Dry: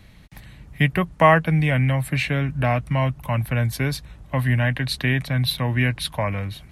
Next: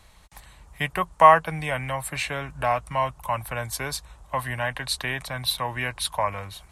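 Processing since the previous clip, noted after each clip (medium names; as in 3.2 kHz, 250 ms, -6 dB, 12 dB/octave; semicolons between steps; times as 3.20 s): graphic EQ 125/250/1000/2000/8000 Hz -10/-10/+9/-4/+10 dB; trim -3 dB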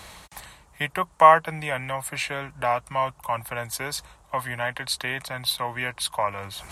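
high-pass 160 Hz 6 dB/octave; reverse; upward compressor, threshold -31 dBFS; reverse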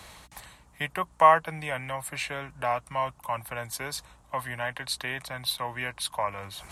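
hum 60 Hz, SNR 32 dB; trim -4 dB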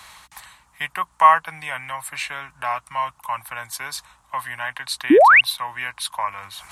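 resonant low shelf 720 Hz -10 dB, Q 1.5; painted sound rise, 5.10–5.41 s, 260–3000 Hz -14 dBFS; trim +4 dB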